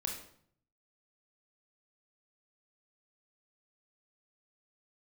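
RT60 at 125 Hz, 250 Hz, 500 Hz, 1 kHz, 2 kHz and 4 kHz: 1.0, 0.75, 0.65, 0.60, 0.50, 0.50 s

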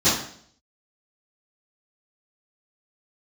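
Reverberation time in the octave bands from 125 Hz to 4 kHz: 0.65, 0.65, 0.60, 0.55, 0.55, 0.60 s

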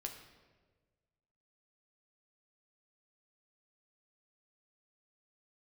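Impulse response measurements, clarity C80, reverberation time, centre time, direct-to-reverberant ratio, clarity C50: 9.5 dB, 1.4 s, 26 ms, 2.5 dB, 7.5 dB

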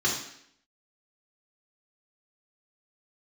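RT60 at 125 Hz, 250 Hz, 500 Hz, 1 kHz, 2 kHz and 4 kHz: 0.60, 0.75, 0.70, 0.70, 0.75, 0.70 s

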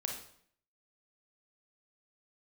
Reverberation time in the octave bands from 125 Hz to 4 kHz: 0.65, 0.70, 0.60, 0.60, 0.60, 0.55 s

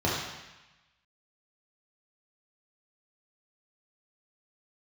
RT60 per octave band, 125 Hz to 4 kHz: 1.1, 1.0, 0.95, 1.1, 1.2, 1.1 s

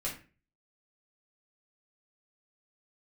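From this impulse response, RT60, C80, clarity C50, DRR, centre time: 0.35 s, 13.5 dB, 7.0 dB, -5.0 dB, 24 ms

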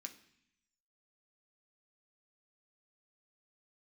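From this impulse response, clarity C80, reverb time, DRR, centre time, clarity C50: 16.5 dB, 0.65 s, 4.0 dB, 9 ms, 13.0 dB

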